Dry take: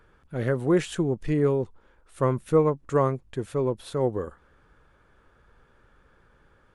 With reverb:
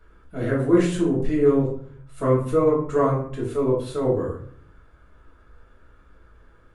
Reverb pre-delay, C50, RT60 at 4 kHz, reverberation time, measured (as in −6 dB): 3 ms, 4.5 dB, 0.35 s, 0.55 s